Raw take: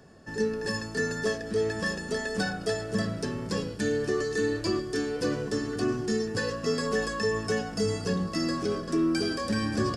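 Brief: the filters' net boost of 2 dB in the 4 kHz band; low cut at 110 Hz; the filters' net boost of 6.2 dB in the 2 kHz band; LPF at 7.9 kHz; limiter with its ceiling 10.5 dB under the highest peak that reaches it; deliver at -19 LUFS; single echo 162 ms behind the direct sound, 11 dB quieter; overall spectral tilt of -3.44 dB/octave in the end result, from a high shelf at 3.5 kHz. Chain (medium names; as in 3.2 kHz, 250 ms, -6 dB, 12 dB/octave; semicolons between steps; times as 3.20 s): high-pass 110 Hz; low-pass 7.9 kHz; peaking EQ 2 kHz +7.5 dB; treble shelf 3.5 kHz -3.5 dB; peaking EQ 4 kHz +4.5 dB; peak limiter -24 dBFS; delay 162 ms -11 dB; trim +13 dB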